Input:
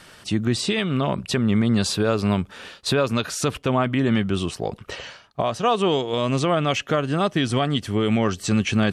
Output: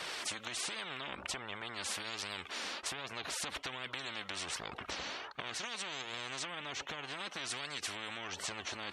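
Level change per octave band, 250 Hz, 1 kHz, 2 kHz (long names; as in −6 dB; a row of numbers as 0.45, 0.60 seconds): −30.5, −17.0, −10.0 decibels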